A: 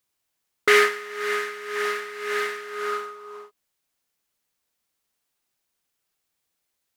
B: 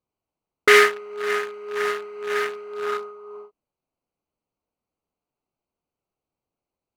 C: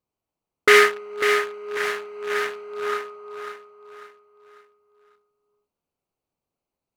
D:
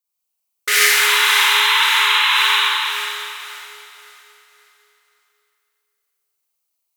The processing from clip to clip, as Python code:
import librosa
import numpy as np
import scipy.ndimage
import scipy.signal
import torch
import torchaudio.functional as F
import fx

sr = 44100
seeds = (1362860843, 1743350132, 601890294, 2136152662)

y1 = fx.wiener(x, sr, points=25)
y1 = y1 * 10.0 ** (3.5 / 20.0)
y2 = fx.echo_feedback(y1, sr, ms=546, feedback_pct=37, wet_db=-8.5)
y3 = np.diff(y2, prepend=0.0)
y3 = fx.spec_paint(y3, sr, seeds[0], shape='noise', start_s=0.9, length_s=1.71, low_hz=830.0, high_hz=4100.0, level_db=-30.0)
y3 = fx.rev_schroeder(y3, sr, rt60_s=2.6, comb_ms=31, drr_db=-8.0)
y3 = y3 * 10.0 ** (6.0 / 20.0)